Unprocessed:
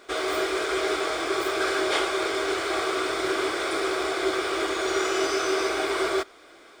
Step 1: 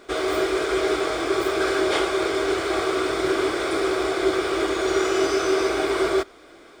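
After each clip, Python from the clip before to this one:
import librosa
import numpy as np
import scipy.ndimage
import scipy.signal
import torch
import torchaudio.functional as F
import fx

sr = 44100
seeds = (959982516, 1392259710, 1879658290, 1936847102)

y = fx.low_shelf(x, sr, hz=390.0, db=10.0)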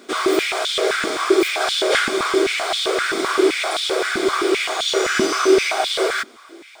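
y = fx.high_shelf(x, sr, hz=2500.0, db=9.5)
y = fx.filter_held_highpass(y, sr, hz=7.7, low_hz=230.0, high_hz=3400.0)
y = y * librosa.db_to_amplitude(-1.5)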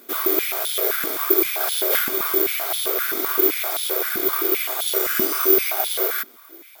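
y = (np.kron(x[::3], np.eye(3)[0]) * 3)[:len(x)]
y = y * librosa.db_to_amplitude(-7.0)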